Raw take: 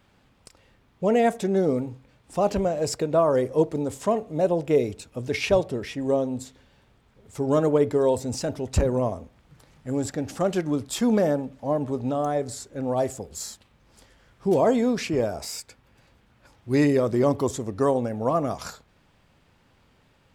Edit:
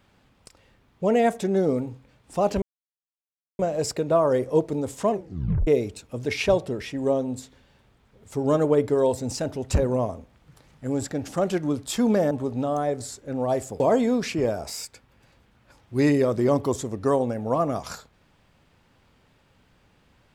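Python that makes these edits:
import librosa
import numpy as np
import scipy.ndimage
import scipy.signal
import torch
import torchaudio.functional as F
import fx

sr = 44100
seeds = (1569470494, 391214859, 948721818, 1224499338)

y = fx.edit(x, sr, fx.insert_silence(at_s=2.62, length_s=0.97),
    fx.tape_stop(start_s=4.14, length_s=0.56),
    fx.cut(start_s=11.34, length_s=0.45),
    fx.cut(start_s=13.28, length_s=1.27), tone=tone)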